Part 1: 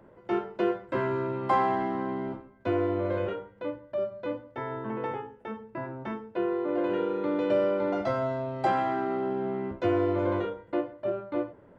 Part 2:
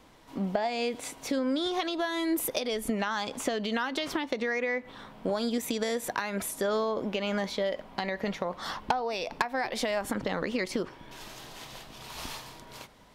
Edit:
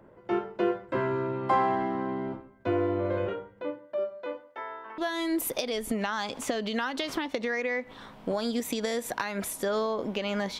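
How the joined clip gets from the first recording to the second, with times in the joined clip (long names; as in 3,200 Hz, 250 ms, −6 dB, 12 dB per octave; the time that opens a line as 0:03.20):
part 1
0:03.61–0:04.98: high-pass filter 190 Hz → 1,100 Hz
0:04.98: continue with part 2 from 0:01.96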